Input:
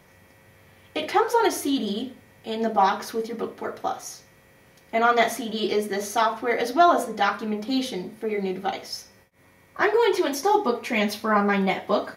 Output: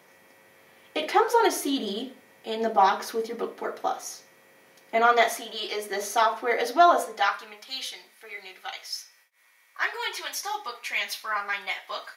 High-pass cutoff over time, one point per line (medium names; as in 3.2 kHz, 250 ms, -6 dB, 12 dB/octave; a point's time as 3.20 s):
4.98 s 290 Hz
5.69 s 840 Hz
5.98 s 400 Hz
6.90 s 400 Hz
7.62 s 1.5 kHz